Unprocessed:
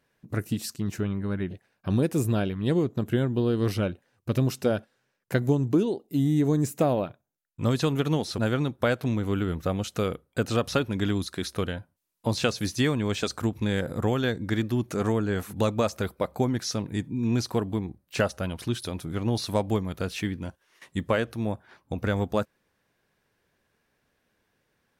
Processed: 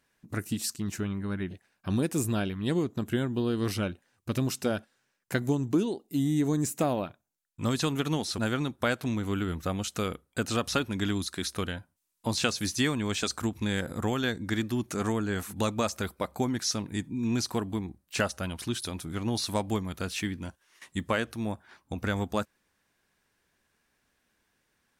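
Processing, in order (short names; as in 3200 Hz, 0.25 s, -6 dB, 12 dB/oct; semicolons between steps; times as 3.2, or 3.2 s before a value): graphic EQ 125/500/8000 Hz -6/-6/+5 dB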